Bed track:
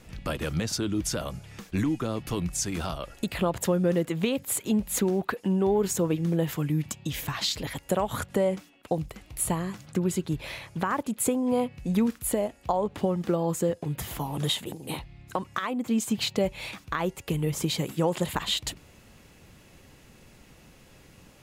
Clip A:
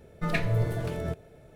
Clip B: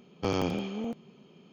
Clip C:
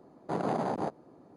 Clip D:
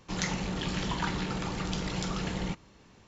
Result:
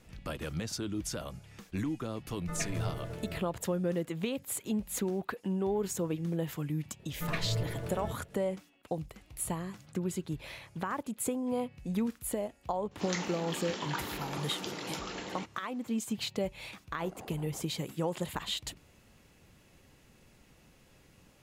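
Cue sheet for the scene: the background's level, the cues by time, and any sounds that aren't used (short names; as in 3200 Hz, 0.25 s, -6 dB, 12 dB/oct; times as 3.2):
bed track -7.5 dB
2.26 add A -9.5 dB
6.99 add A -7 dB
12.91 add D -3.5 dB + HPF 250 Hz 24 dB/oct
16.72 add C -16.5 dB + reverb removal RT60 1.5 s
not used: B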